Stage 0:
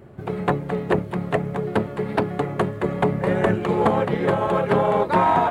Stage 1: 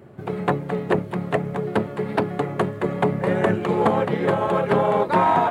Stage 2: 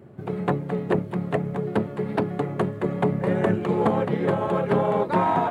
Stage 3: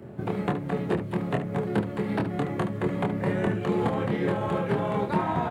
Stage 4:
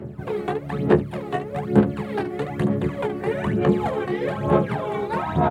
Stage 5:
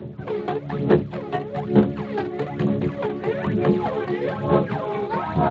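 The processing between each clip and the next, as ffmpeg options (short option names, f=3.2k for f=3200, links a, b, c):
-af "highpass=97"
-af "equalizer=f=170:w=0.38:g=5.5,volume=-5.5dB"
-filter_complex "[0:a]acrossover=split=230|1400[a][b][c];[a]acompressor=threshold=-30dB:ratio=4[d];[b]acompressor=threshold=-35dB:ratio=4[e];[c]acompressor=threshold=-43dB:ratio=4[f];[d][e][f]amix=inputs=3:normalize=0,asplit=2[g][h];[h]aecho=0:1:25|73:0.631|0.299[i];[g][i]amix=inputs=2:normalize=0,volume=3.5dB"
-filter_complex "[0:a]asplit=2[a][b];[b]adelay=14,volume=-7dB[c];[a][c]amix=inputs=2:normalize=0,aphaser=in_gain=1:out_gain=1:delay=2.7:decay=0.69:speed=1.1:type=sinusoidal,volume=-1dB"
-ar 16000 -c:a libspeex -b:a 21k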